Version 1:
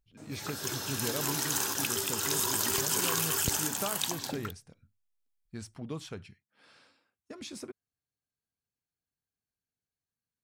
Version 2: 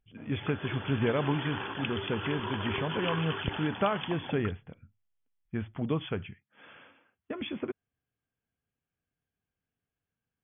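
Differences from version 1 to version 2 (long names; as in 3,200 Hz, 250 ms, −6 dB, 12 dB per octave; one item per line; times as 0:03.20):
speech +8.5 dB
master: add linear-phase brick-wall low-pass 3,500 Hz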